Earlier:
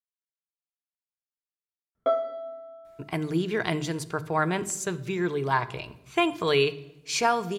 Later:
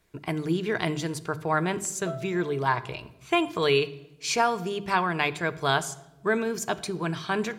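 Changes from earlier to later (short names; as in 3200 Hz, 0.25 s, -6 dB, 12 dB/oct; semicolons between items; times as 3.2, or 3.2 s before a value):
speech: entry -2.85 s; background -12.0 dB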